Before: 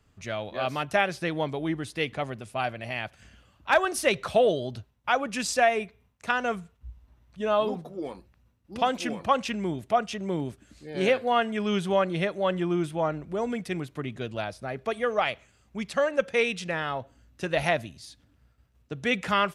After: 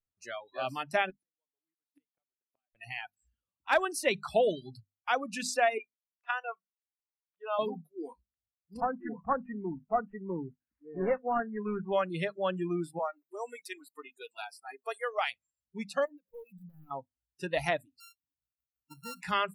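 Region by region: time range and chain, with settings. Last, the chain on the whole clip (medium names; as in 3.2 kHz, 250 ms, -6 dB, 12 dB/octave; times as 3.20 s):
1.10–2.75 s: high-pass 250 Hz + inverted gate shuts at -29 dBFS, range -32 dB
5.78–7.59 s: high-pass 690 Hz + distance through air 190 m
8.80–11.93 s: CVSD coder 16 kbps + low-pass 2 kHz 24 dB/octave
12.99–15.31 s: high-pass 550 Hz + treble shelf 9.5 kHz +10 dB
16.05–16.91 s: median filter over 41 samples + compression 5:1, threshold -39 dBFS
18.00–19.22 s: sorted samples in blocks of 32 samples + bass shelf 120 Hz -5.5 dB + compression 2:1, threshold -40 dBFS
whole clip: reverb removal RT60 0.66 s; hum notches 50/100/150/200/250 Hz; spectral noise reduction 29 dB; trim -4.5 dB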